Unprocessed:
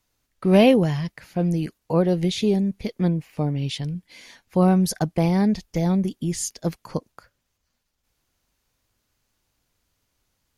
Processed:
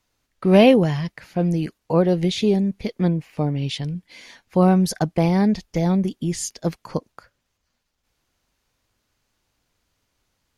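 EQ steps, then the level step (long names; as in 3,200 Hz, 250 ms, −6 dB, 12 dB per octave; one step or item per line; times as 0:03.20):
low-shelf EQ 200 Hz −3 dB
high-shelf EQ 8,700 Hz −8.5 dB
+3.0 dB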